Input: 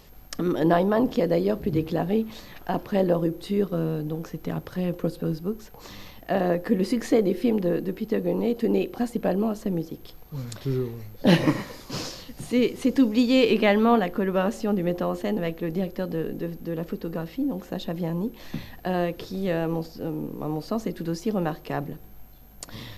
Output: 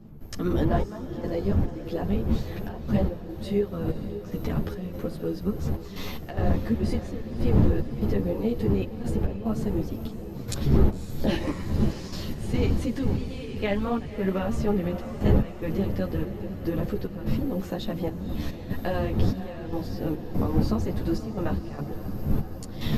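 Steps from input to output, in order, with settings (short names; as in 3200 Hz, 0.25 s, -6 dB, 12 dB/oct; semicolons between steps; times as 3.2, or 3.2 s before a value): recorder AGC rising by 16 dB/s; wind noise 160 Hz -19 dBFS; step gate ".xxx..xx.xxxx.x" 73 bpm -12 dB; on a send: diffused feedback echo 0.549 s, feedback 67%, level -12 dB; on the sum: ensemble effect; gain -5.5 dB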